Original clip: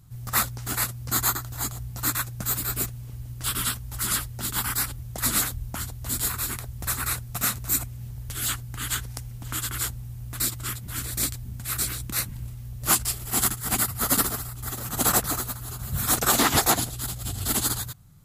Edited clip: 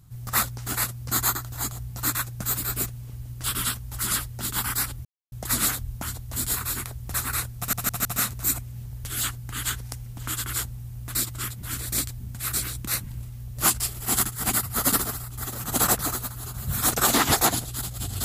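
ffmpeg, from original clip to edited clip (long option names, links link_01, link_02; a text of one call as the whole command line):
ffmpeg -i in.wav -filter_complex "[0:a]asplit=5[link_01][link_02][link_03][link_04][link_05];[link_01]atrim=end=5.05,asetpts=PTS-STARTPTS,afade=type=out:start_time=5.046:duration=0.004:curve=hsin,apad=pad_dur=0.27[link_06];[link_02]atrim=start=5.05:end=7.462,asetpts=PTS-STARTPTS,afade=type=in:duration=0.004:curve=hsin[link_07];[link_03]atrim=start=7.298:end=7.462[link_08];[link_04]atrim=start=7.298:end=7.462[link_09];[link_05]atrim=start=7.298[link_10];[link_06][link_07]concat=n=2:v=0:a=1[link_11];[link_11][link_08]acrossfade=duration=0.004:curve1=hsin:curve2=hsin[link_12];[link_12][link_09]acrossfade=duration=0.004:curve1=hsin:curve2=hsin[link_13];[link_13][link_10]acrossfade=duration=0.004:curve1=hsin:curve2=hsin" out.wav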